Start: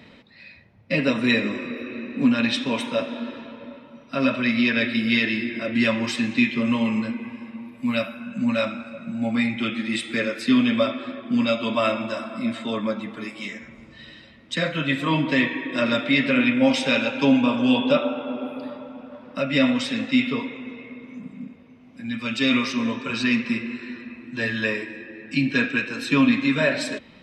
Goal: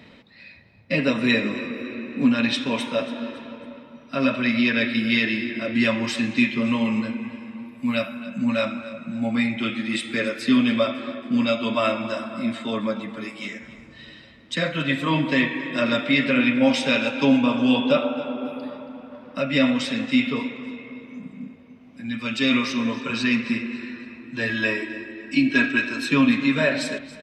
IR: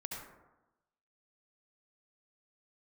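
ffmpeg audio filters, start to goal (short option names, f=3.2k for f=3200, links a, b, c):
-filter_complex "[0:a]asettb=1/sr,asplit=3[a][b][c];[a]atrim=end=24.494[d];[b]atrim=start=24.49:end=26.08,asetpts=PTS-STARTPTS,afade=t=in:d=0.004:c=qsin,afade=t=out:st=1.586:d=0.004:c=qsin,aecho=1:1:3.1:0.7,atrim=end_sample=70119[e];[c]atrim=start=26.076[f];[d][e]acrossfade=d=0.004:c1=hsin:c2=qsin[g];[g][f]acrossfade=d=0.004:c1=qsin:c2=hsin,asplit=2[h][i];[i]aecho=0:1:277|554|831:0.141|0.0565|0.0226[j];[h][j]amix=inputs=2:normalize=0"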